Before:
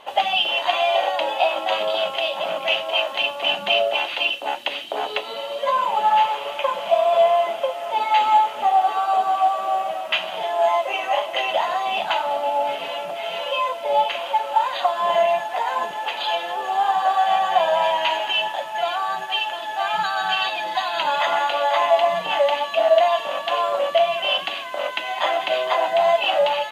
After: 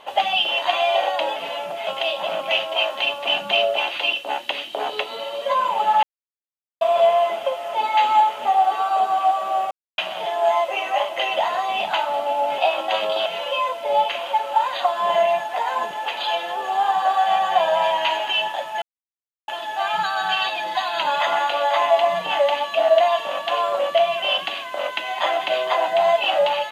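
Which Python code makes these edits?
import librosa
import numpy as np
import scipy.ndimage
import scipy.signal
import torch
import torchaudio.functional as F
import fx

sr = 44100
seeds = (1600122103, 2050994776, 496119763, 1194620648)

y = fx.edit(x, sr, fx.swap(start_s=1.36, length_s=0.68, other_s=12.75, other_length_s=0.51),
    fx.silence(start_s=6.2, length_s=0.78),
    fx.silence(start_s=9.88, length_s=0.27),
    fx.silence(start_s=18.82, length_s=0.66), tone=tone)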